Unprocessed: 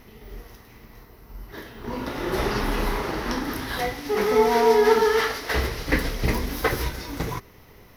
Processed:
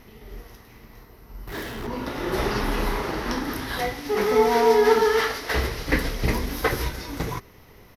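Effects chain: resampled via 32 kHz; 1.47–1.87 s: power-law waveshaper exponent 0.5

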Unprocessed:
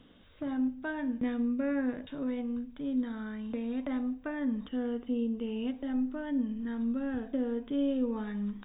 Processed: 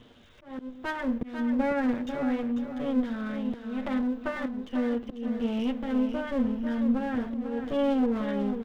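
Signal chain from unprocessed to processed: comb filter that takes the minimum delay 8.5 ms; slow attack 331 ms; feedback delay 494 ms, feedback 28%, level -8 dB; trim +5.5 dB

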